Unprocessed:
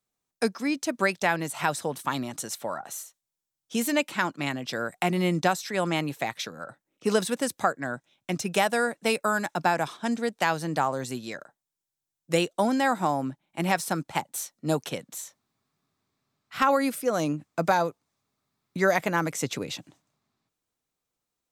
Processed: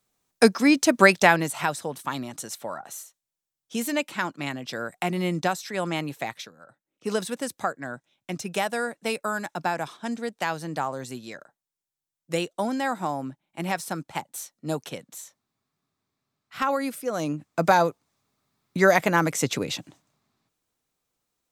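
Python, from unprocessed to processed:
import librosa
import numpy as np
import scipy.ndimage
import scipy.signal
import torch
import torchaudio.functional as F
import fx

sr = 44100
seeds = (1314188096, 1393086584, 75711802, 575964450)

y = fx.gain(x, sr, db=fx.line((1.19, 9.0), (1.76, -1.5), (6.34, -1.5), (6.56, -12.5), (7.14, -3.0), (17.09, -3.0), (17.75, 4.5)))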